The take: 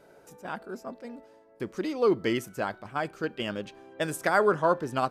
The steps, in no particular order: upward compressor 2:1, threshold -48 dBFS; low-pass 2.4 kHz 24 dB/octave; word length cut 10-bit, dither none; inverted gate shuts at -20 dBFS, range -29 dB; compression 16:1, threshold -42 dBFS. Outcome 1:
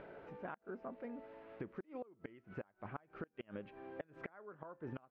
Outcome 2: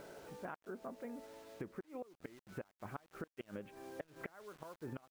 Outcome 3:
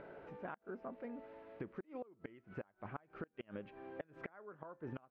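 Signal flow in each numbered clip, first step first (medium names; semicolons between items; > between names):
word length cut > inverted gate > upward compressor > compression > low-pass; upward compressor > inverted gate > low-pass > word length cut > compression; upward compressor > word length cut > inverted gate > compression > low-pass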